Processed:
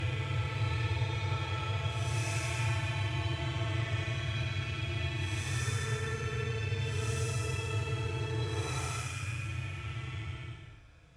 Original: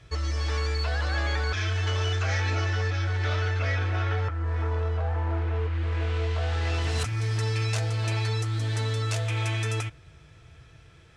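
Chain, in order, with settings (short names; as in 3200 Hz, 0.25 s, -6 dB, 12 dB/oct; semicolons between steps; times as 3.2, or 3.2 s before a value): Paulstretch 19×, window 0.05 s, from 9.34; added harmonics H 7 -43 dB, 8 -33 dB, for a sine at -15 dBFS; gain -6 dB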